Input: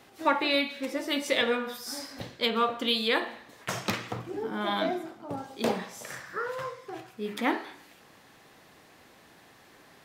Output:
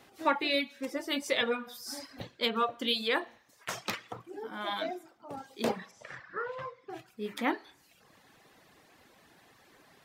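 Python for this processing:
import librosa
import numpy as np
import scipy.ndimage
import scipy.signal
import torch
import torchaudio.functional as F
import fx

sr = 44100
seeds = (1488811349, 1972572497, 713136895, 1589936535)

y = fx.dereverb_blind(x, sr, rt60_s=0.83)
y = fx.low_shelf(y, sr, hz=340.0, db=-10.5, at=(3.38, 5.37))
y = fx.lowpass(y, sr, hz=3300.0, slope=12, at=(5.91, 6.9))
y = y * 10.0 ** (-2.5 / 20.0)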